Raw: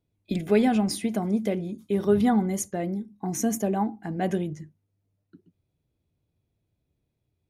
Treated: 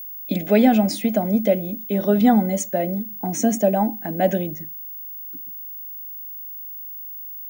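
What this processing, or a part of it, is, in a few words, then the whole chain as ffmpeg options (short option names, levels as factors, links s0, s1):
old television with a line whistle: -af "highpass=f=180:w=0.5412,highpass=f=180:w=1.3066,equalizer=f=270:t=q:w=4:g=3,equalizer=f=390:t=q:w=4:g=-9,equalizer=f=580:t=q:w=4:g=10,equalizer=f=1100:t=q:w=4:g=-9,equalizer=f=4900:t=q:w=4:g=-3,lowpass=f=8100:w=0.5412,lowpass=f=8100:w=1.3066,aeval=exprs='val(0)+0.0126*sin(2*PI*15625*n/s)':c=same,volume=2"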